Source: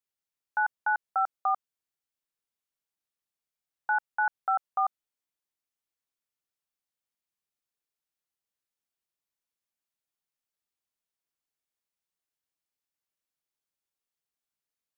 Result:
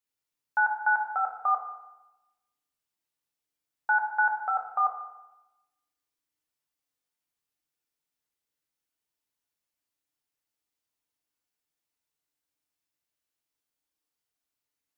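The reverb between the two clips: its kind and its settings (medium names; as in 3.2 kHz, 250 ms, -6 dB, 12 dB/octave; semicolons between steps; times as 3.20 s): FDN reverb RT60 1 s, low-frequency decay 1.4×, high-frequency decay 0.95×, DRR 0.5 dB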